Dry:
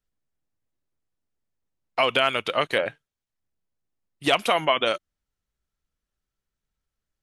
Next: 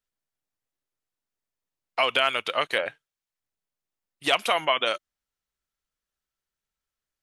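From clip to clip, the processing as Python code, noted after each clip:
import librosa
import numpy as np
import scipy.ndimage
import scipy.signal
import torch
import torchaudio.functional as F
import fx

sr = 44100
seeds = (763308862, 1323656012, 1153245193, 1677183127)

y = fx.low_shelf(x, sr, hz=380.0, db=-11.5)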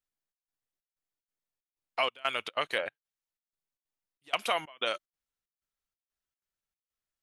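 y = fx.step_gate(x, sr, bpm=187, pattern='xxxx..xxxx..xxx.', floor_db=-24.0, edge_ms=4.5)
y = y * librosa.db_to_amplitude(-5.5)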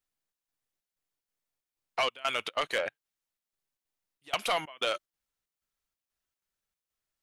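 y = 10.0 ** (-24.0 / 20.0) * np.tanh(x / 10.0 ** (-24.0 / 20.0))
y = y * librosa.db_to_amplitude(3.5)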